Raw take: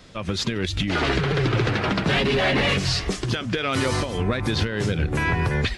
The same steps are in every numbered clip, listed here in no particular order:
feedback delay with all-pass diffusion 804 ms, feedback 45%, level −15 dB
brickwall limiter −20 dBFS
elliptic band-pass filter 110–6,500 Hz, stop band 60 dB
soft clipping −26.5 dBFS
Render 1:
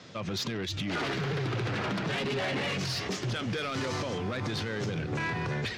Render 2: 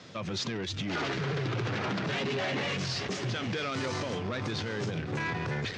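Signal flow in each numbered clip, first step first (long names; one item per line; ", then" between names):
brickwall limiter, then elliptic band-pass filter, then soft clipping, then feedback delay with all-pass diffusion
feedback delay with all-pass diffusion, then brickwall limiter, then soft clipping, then elliptic band-pass filter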